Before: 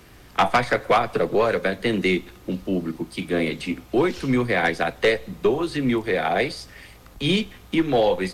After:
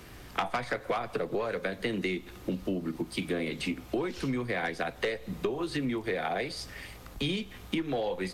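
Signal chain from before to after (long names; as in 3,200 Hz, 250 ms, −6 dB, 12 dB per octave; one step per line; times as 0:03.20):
downward compressor 10 to 1, threshold −28 dBFS, peak gain reduction 14 dB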